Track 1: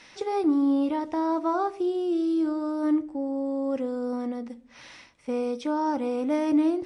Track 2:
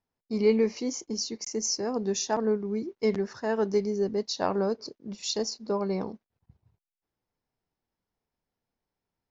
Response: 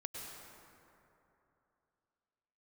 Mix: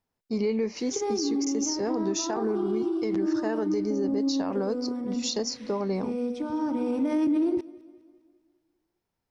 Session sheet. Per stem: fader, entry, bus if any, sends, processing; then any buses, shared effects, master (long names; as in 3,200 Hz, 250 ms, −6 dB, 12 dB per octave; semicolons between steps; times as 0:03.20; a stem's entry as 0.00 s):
0.0 dB, 0.75 s, send −8.5 dB, echo send −22 dB, low shelf with overshoot 420 Hz +7 dB, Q 1.5; mains-hum notches 50/100/150/200/250/300/350 Hz; brickwall limiter −17.5 dBFS, peak gain reduction 10.5 dB; automatic ducking −12 dB, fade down 1.80 s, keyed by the second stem
+3.0 dB, 0.00 s, no send, no echo send, downward compressor 2 to 1, threshold −28 dBFS, peak gain reduction 6.5 dB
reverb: on, RT60 3.0 s, pre-delay 92 ms
echo: repeating echo 202 ms, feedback 50%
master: brickwall limiter −19 dBFS, peak gain reduction 9 dB